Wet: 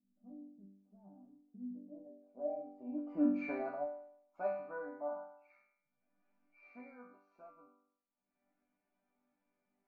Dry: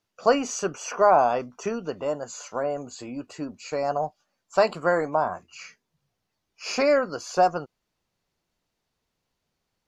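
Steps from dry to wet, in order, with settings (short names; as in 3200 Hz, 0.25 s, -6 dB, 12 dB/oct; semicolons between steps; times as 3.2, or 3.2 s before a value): Doppler pass-by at 3.33, 24 m/s, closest 2.3 m; upward compressor, threshold -57 dBFS; low-pass sweep 210 Hz -> 1600 Hz, 1.61–3.41; resonator bank G3 major, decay 0.69 s; small resonant body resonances 260/650/2300 Hz, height 17 dB, ringing for 25 ms; gain +11 dB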